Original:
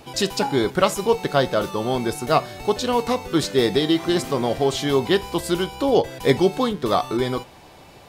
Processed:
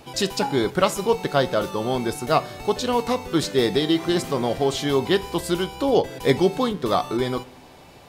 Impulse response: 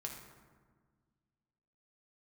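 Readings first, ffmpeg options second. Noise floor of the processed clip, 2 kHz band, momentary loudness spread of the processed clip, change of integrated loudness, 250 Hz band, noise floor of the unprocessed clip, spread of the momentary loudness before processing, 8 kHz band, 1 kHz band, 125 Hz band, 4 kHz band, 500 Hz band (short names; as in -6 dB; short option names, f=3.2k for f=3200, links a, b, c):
-47 dBFS, -1.0 dB, 5 LU, -1.0 dB, -1.0 dB, -47 dBFS, 5 LU, -1.0 dB, -1.0 dB, -1.0 dB, -1.0 dB, -1.5 dB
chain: -filter_complex "[0:a]asplit=2[a][b];[1:a]atrim=start_sample=2205,asetrate=57330,aresample=44100[c];[b][c]afir=irnorm=-1:irlink=0,volume=-13dB[d];[a][d]amix=inputs=2:normalize=0,volume=-2dB"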